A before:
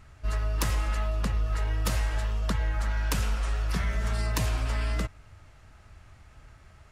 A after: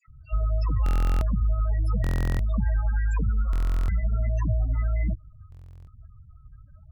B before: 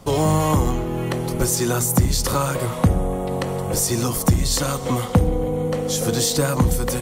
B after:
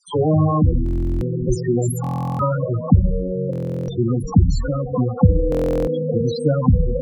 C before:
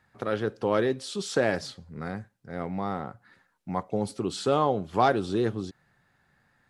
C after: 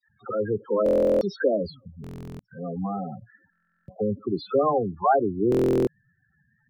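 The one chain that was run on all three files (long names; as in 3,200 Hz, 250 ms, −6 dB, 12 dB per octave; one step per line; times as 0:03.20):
all-pass dispersion lows, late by 81 ms, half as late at 1,400 Hz
spectral peaks only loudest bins 8
buffer that repeats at 0:00.84/0:02.02/0:03.51/0:05.50, samples 1,024, times 15
level +4 dB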